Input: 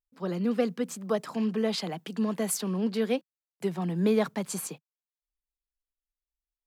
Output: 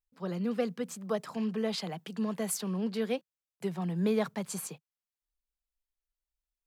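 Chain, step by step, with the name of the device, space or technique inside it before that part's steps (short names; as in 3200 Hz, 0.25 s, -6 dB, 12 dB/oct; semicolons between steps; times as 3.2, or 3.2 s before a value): low shelf boost with a cut just above (low shelf 110 Hz +7 dB; bell 290 Hz -5.5 dB 0.64 oct); gain -3.5 dB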